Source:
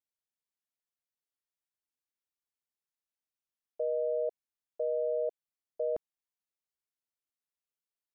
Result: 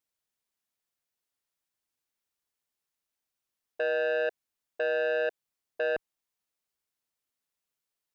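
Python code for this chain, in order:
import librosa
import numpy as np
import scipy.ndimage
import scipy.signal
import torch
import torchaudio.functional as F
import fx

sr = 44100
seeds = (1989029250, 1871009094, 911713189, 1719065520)

y = fx.transformer_sat(x, sr, knee_hz=1100.0)
y = F.gain(torch.from_numpy(y), 6.5).numpy()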